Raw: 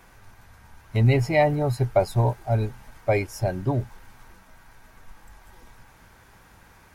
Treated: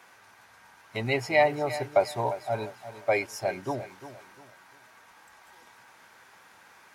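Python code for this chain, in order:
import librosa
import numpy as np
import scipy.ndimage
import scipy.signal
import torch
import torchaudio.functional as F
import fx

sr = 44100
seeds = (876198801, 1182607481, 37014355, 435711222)

p1 = fx.weighting(x, sr, curve='A')
y = p1 + fx.echo_feedback(p1, sr, ms=351, feedback_pct=33, wet_db=-13.5, dry=0)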